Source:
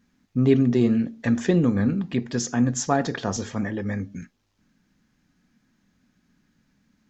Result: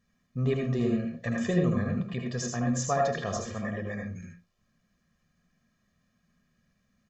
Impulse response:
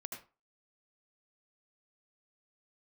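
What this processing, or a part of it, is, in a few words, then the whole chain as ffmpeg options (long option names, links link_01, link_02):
microphone above a desk: -filter_complex "[0:a]aecho=1:1:1.7:0.72[link_01];[1:a]atrim=start_sample=2205[link_02];[link_01][link_02]afir=irnorm=-1:irlink=0,volume=-3.5dB"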